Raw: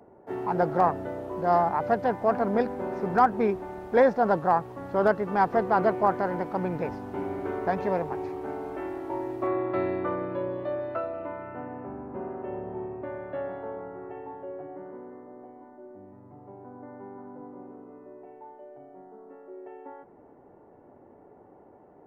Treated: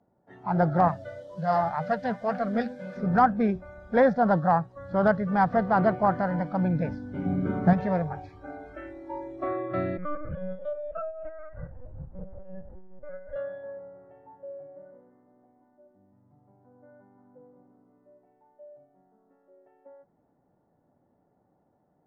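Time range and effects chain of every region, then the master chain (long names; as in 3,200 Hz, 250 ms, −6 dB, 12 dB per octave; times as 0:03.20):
0:00.88–0:02.97: high-shelf EQ 2,200 Hz +11 dB + flanger 2 Hz, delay 5.3 ms, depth 4 ms, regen +49%
0:07.25–0:07.73: parametric band 170 Hz +12.5 dB 1.1 octaves + floating-point word with a short mantissa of 6 bits
0:09.97–0:13.36: shaped tremolo saw up 5.3 Hz, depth 65% + repeating echo 255 ms, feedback 27%, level −13 dB + linear-prediction vocoder at 8 kHz pitch kept
whole clip: low-pass filter 3,900 Hz 12 dB per octave; noise reduction from a noise print of the clip's start 16 dB; graphic EQ with 15 bands 160 Hz +6 dB, 400 Hz −10 dB, 1,000 Hz −5 dB, 2,500 Hz −7 dB; level +4 dB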